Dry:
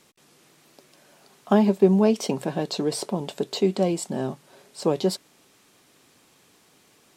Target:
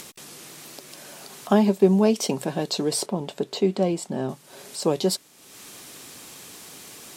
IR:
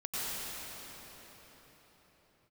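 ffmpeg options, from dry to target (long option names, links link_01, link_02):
-af "asetnsamples=nb_out_samples=441:pad=0,asendcmd='3.06 highshelf g -3.5;4.29 highshelf g 8.5',highshelf=frequency=4400:gain=7.5,acompressor=mode=upward:threshold=-31dB:ratio=2.5"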